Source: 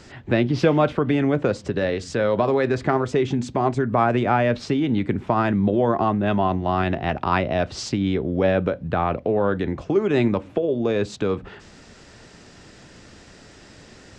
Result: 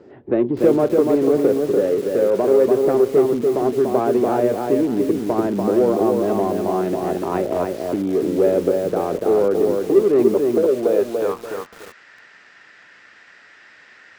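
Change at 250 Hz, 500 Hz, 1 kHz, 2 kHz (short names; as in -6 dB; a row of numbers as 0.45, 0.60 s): +2.5, +6.5, -2.5, -7.5 dB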